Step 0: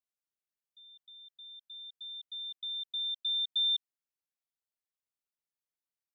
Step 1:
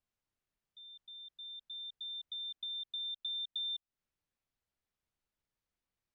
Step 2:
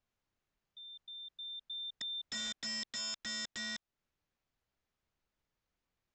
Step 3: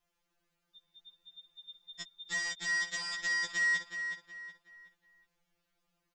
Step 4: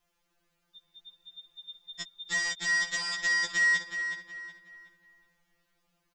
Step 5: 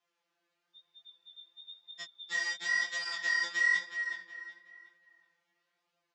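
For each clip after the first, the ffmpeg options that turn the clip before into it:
-af "aemphasis=mode=reproduction:type=bsi,acompressor=threshold=-47dB:ratio=3,volume=6dB"
-af "highshelf=f=3.5k:g=-6,aresample=16000,aeval=exprs='(mod(119*val(0)+1,2)-1)/119':c=same,aresample=44100,volume=5.5dB"
-filter_complex "[0:a]asplit=2[a][b];[b]adelay=370,lowpass=f=4k:p=1,volume=-7dB,asplit=2[c][d];[d]adelay=370,lowpass=f=4k:p=1,volume=0.38,asplit=2[e][f];[f]adelay=370,lowpass=f=4k:p=1,volume=0.38,asplit=2[g][h];[h]adelay=370,lowpass=f=4k:p=1,volume=0.38[i];[a][c][e][g][i]amix=inputs=5:normalize=0,afftfilt=real='re*2.83*eq(mod(b,8),0)':imag='im*2.83*eq(mod(b,8),0)':win_size=2048:overlap=0.75,volume=8.5dB"
-filter_complex "[0:a]asplit=2[a][b];[b]adelay=447,lowpass=f=1.2k:p=1,volume=-12.5dB,asplit=2[c][d];[d]adelay=447,lowpass=f=1.2k:p=1,volume=0.3,asplit=2[e][f];[f]adelay=447,lowpass=f=1.2k:p=1,volume=0.3[g];[a][c][e][g]amix=inputs=4:normalize=0,volume=5dB"
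-af "flanger=delay=19:depth=7.8:speed=1,highpass=310,lowpass=5.5k"

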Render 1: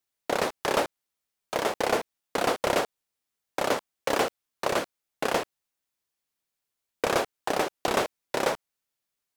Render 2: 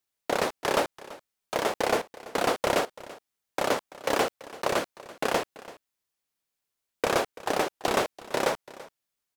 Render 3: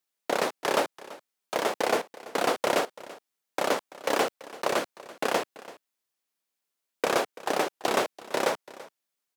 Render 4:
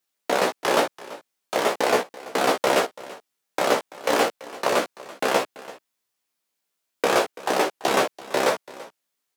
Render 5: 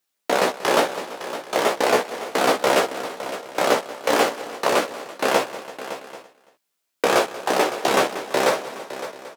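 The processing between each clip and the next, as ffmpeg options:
-af "aecho=1:1:335:0.119"
-af "highpass=180"
-af "flanger=delay=15:depth=2.2:speed=0.37,volume=8dB"
-af "aecho=1:1:185|561|788:0.141|0.237|0.1,volume=2dB"

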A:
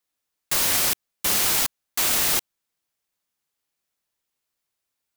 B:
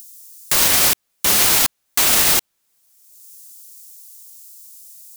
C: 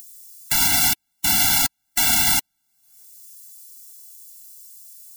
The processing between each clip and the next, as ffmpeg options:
-filter_complex "[0:a]acrossover=split=5800[a][b];[b]acompressor=mode=upward:threshold=-27dB:ratio=2.5[c];[a][c]amix=inputs=2:normalize=0,alimiter=level_in=13.5dB:limit=-1dB:release=50:level=0:latency=1,volume=-3.5dB"
-af "acompressor=mode=upward:threshold=-36dB:ratio=2.5,afftfilt=real='re*eq(mod(floor(b*sr/1024/330),2),0)':imag='im*eq(mod(floor(b*sr/1024/330),2),0)':win_size=1024:overlap=0.75"

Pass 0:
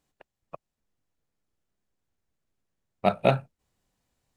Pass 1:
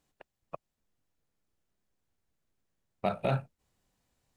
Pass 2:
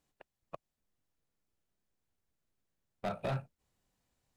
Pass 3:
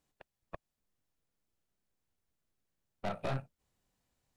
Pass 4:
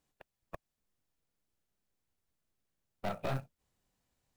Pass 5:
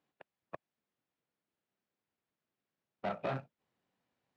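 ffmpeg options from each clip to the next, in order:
-af "alimiter=limit=-17dB:level=0:latency=1:release=57"
-af "asoftclip=type=hard:threshold=-26.5dB,volume=-3.5dB"
-af "aeval=exprs='(tanh(50.1*val(0)+0.75)-tanh(0.75))/50.1':c=same,volume=4dB"
-af "acrusher=bits=6:mode=log:mix=0:aa=0.000001"
-af "highpass=170,lowpass=3.1k,volume=1dB"

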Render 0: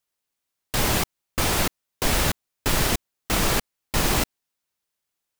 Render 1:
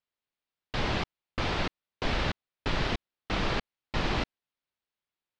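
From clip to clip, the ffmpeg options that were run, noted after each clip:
-af "lowpass=f=4.3k:w=0.5412,lowpass=f=4.3k:w=1.3066,volume=-6dB"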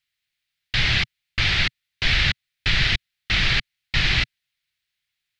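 -af "equalizer=f=125:t=o:w=1:g=4,equalizer=f=250:t=o:w=1:g=-11,equalizer=f=500:t=o:w=1:g=-12,equalizer=f=1k:t=o:w=1:g=-12,equalizer=f=2k:t=o:w=1:g=9,equalizer=f=4k:t=o:w=1:g=6,volume=8dB"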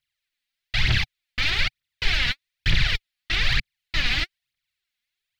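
-af "aphaser=in_gain=1:out_gain=1:delay=4.3:decay=0.66:speed=1.1:type=triangular,volume=-5.5dB"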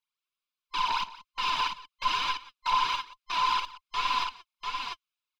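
-filter_complex "[0:a]afftfilt=real='real(if(between(b,1,1008),(2*floor((b-1)/48)+1)*48-b,b),0)':imag='imag(if(between(b,1,1008),(2*floor((b-1)/48)+1)*48-b,b),0)*if(between(b,1,1008),-1,1)':win_size=2048:overlap=0.75,asplit=2[a][b];[b]aecho=0:1:45|177|694:0.119|0.126|0.631[c];[a][c]amix=inputs=2:normalize=0,volume=-9dB"

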